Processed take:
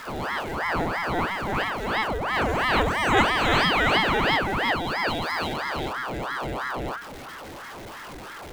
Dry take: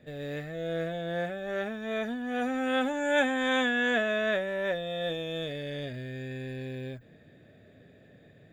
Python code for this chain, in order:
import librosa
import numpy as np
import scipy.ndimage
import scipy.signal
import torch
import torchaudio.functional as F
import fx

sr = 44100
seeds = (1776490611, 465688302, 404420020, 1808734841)

y = x + 0.5 * 10.0 ** (-40.5 / 20.0) * np.sign(x)
y = fx.ring_lfo(y, sr, carrier_hz=860.0, swing_pct=80, hz=3.0)
y = y * 10.0 ** (8.0 / 20.0)